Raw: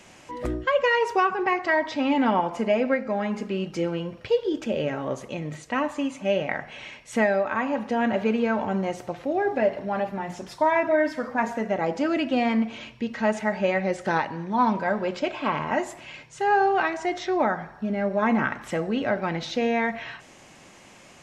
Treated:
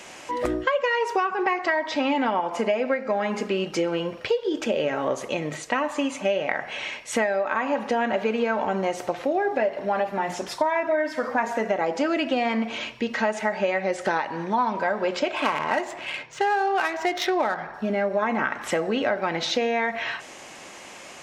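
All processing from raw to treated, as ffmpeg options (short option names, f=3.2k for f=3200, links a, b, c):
-filter_complex "[0:a]asettb=1/sr,asplit=3[a][b][c];[a]atrim=end=15.364[d];[b]atrim=start=15.36:end=17.74,asetpts=PTS-STARTPTS,afade=t=in:d=0.004:c=qsin,afade=t=out:st=2.376:d=0.004:c=qsin,highshelf=f=2.6k:g=8.5,adynamicsmooth=sensitivity=3.5:basefreq=2.5k[e];[c]atrim=start=17.736[f];[d][e]acrossfade=d=0.004:c1=hsin:c2=qsin[g];[g][f]acrossfade=d=0.004:c1=qsin:c2=hsin,bass=f=250:g=-12,treble=f=4k:g=0,acompressor=threshold=-29dB:ratio=6,volume=8.5dB"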